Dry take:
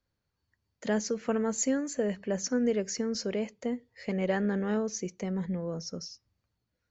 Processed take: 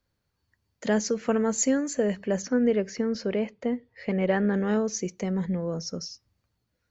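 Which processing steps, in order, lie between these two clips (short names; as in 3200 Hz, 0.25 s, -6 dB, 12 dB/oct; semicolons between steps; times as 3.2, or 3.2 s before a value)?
2.42–4.54 LPF 3300 Hz 12 dB/oct; gain +4.5 dB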